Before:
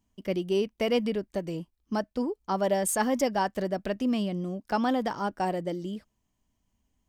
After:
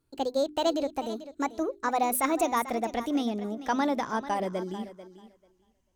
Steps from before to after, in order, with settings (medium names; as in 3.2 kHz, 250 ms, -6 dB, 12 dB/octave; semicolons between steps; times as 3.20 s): gliding tape speed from 143% -> 95%; hum notches 50/100/150/200/250/300/350/400 Hz; thinning echo 441 ms, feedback 16%, high-pass 190 Hz, level -13.5 dB